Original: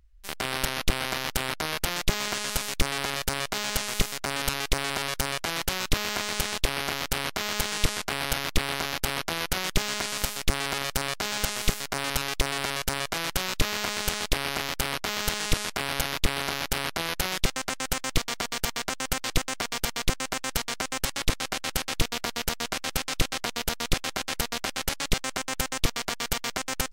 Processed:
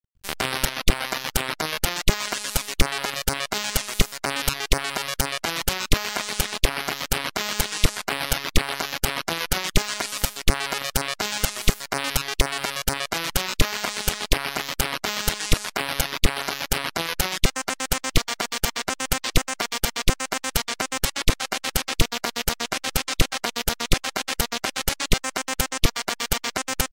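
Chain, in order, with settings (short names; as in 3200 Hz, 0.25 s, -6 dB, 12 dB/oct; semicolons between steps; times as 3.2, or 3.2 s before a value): crossover distortion -51 dBFS; reverb removal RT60 1.5 s; gain +6 dB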